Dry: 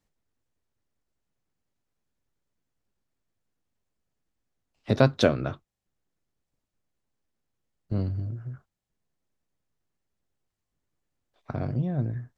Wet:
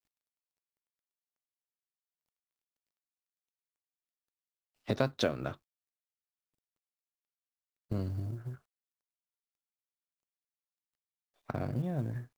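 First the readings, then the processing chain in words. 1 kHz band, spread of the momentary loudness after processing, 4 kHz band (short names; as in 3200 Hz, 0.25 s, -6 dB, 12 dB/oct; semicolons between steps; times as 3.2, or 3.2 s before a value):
-7.0 dB, 15 LU, -5.5 dB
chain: G.711 law mismatch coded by A; low shelf 250 Hz -4.5 dB; compressor 2:1, threshold -35 dBFS, peak gain reduction 11.5 dB; gain +2 dB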